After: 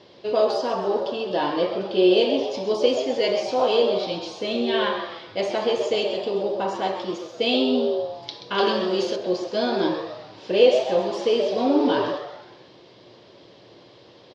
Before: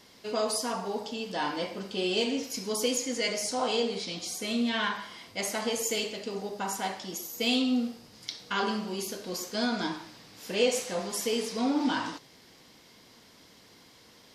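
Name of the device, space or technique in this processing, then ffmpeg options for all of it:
frequency-shifting delay pedal into a guitar cabinet: -filter_complex "[0:a]asplit=6[link_01][link_02][link_03][link_04][link_05][link_06];[link_02]adelay=130,afreqshift=150,volume=-10dB[link_07];[link_03]adelay=260,afreqshift=300,volume=-16.4dB[link_08];[link_04]adelay=390,afreqshift=450,volume=-22.8dB[link_09];[link_05]adelay=520,afreqshift=600,volume=-29.1dB[link_10];[link_06]adelay=650,afreqshift=750,volume=-35.5dB[link_11];[link_01][link_07][link_08][link_09][link_10][link_11]amix=inputs=6:normalize=0,highpass=85,equalizer=frequency=120:width_type=q:width=4:gain=7,equalizer=frequency=230:width_type=q:width=4:gain=-6,equalizer=frequency=360:width_type=q:width=4:gain=9,equalizer=frequency=570:width_type=q:width=4:gain=9,equalizer=frequency=1400:width_type=q:width=4:gain=-5,equalizer=frequency=2100:width_type=q:width=4:gain=-7,lowpass=frequency=4200:width=0.5412,lowpass=frequency=4200:width=1.3066,asettb=1/sr,asplit=3[link_12][link_13][link_14];[link_12]atrim=end=8.584[link_15];[link_13]atrim=start=8.58:end=9.16,asetpts=PTS-STARTPTS,afade=type=in:duration=0.004:curve=qsin,afade=type=out:start_time=0.576:duration=0.004:curve=qsin,highshelf=frequency=2600:gain=9[link_16];[link_14]atrim=start=9.156[link_17];[link_15][link_16]acrossfade=duration=0.004:curve1=hsin:curve2=qsin[link_18];[link_18][link_17]acrossfade=duration=0.004:curve1=qsin:curve2=hsin,volume=5.5dB"

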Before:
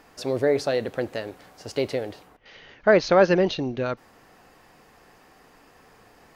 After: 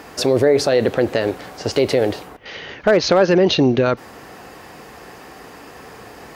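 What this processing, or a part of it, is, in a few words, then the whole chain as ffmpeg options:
mastering chain: -filter_complex "[0:a]highpass=frequency=45:width=0.5412,highpass=frequency=45:width=1.3066,equalizer=frequency=390:width_type=o:width=0.76:gain=2.5,acompressor=threshold=-23dB:ratio=2,asoftclip=type=hard:threshold=-14dB,alimiter=level_in=19.5dB:limit=-1dB:release=50:level=0:latency=1,asettb=1/sr,asplit=3[link_01][link_02][link_03];[link_01]atrim=end=0.694[link_04];[link_02]atrim=start=0.69:end=1.72,asetpts=PTS-STARTPTS,afade=type=in:duration=0.004:curve=qsin,afade=type=out:start_time=1.026:duration=0.004:curve=qsin,acrossover=split=6700[link_05][link_06];[link_06]acompressor=threshold=-45dB:ratio=4:attack=1:release=60[link_07];[link_05][link_07]amix=inputs=2:normalize=0[link_08];[link_03]atrim=start=1.716[link_09];[link_04][link_08]acrossfade=duration=0.004:curve1=hsin:curve2=qsin[link_10];[link_10][link_09]acrossfade=duration=0.004:curve1=qsin:curve2=hsin,volume=-5dB"

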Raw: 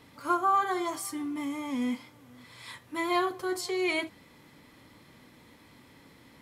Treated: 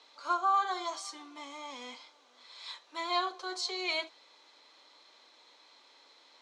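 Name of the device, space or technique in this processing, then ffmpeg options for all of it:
phone speaker on a table: -af "highpass=frequency=470:width=0.5412,highpass=frequency=470:width=1.3066,equalizer=frequency=490:width_type=q:width=4:gain=-4,equalizer=frequency=1900:width_type=q:width=4:gain=-7,equalizer=frequency=4000:width_type=q:width=4:gain=10,equalizer=frequency=6200:width_type=q:width=4:gain=5,lowpass=frequency=6900:width=0.5412,lowpass=frequency=6900:width=1.3066,volume=-2dB"

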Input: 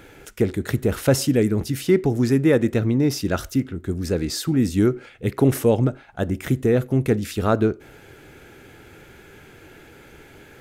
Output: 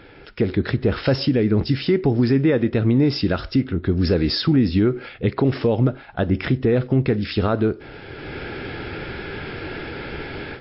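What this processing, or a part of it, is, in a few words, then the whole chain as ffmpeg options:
low-bitrate web radio: -af "dynaudnorm=framelen=270:gausssize=3:maxgain=14.5dB,alimiter=limit=-10dB:level=0:latency=1:release=189,volume=1dB" -ar 12000 -c:a libmp3lame -b:a 32k

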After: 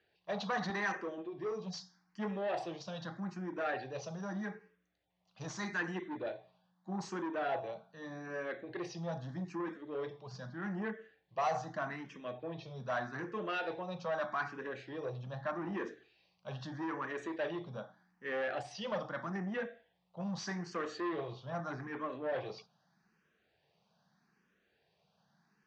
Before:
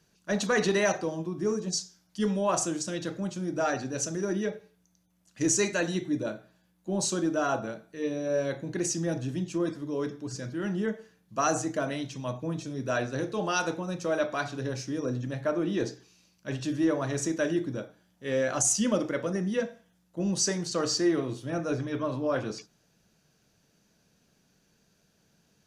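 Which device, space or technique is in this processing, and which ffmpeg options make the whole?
barber-pole phaser into a guitar amplifier: -filter_complex "[0:a]asplit=2[link_01][link_02];[link_02]afreqshift=0.81[link_03];[link_01][link_03]amix=inputs=2:normalize=1,asoftclip=type=tanh:threshold=-28.5dB,highpass=100,equalizer=frequency=110:width_type=q:width=4:gain=-6,equalizer=frequency=280:width_type=q:width=4:gain=-8,equalizer=frequency=780:width_type=q:width=4:gain=7,equalizer=frequency=1100:width_type=q:width=4:gain=6,equalizer=frequency=1800:width_type=q:width=4:gain=6,lowpass=frequency=4400:width=0.5412,lowpass=frequency=4400:width=1.3066,asettb=1/sr,asplit=3[link_04][link_05][link_06];[link_04]atrim=end=0.704[link_07];[link_05]atrim=start=0.7:end=1.18,asetpts=PTS-STARTPTS,afade=type=in:duration=0.004:curve=qsin,afade=type=out:start_time=0.476:duration=0.004:curve=qsin,highpass=180[link_08];[link_06]atrim=start=1.176[link_09];[link_07][link_08]acrossfade=duration=0.004:curve1=hsin:curve2=qsin[link_10];[link_10][link_09]acrossfade=duration=0.004:curve1=qsin:curve2=hsin,volume=-3.5dB"

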